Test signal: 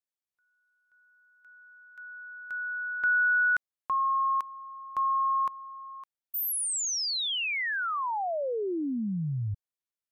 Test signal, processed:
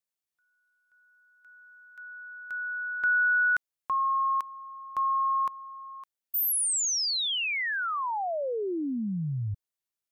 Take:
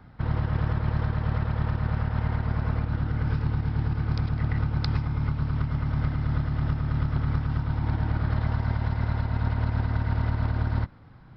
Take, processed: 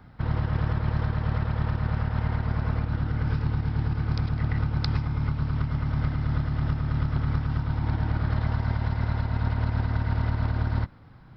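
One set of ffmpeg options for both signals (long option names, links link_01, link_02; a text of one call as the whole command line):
ffmpeg -i in.wav -af "highshelf=frequency=4700:gain=4" out.wav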